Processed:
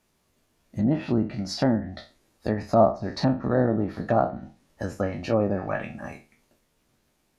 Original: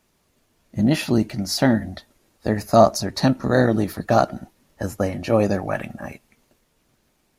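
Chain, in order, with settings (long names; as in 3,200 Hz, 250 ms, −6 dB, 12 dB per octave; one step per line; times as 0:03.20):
peak hold with a decay on every bin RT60 0.32 s
treble cut that deepens with the level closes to 1,100 Hz, closed at −14 dBFS
level −5 dB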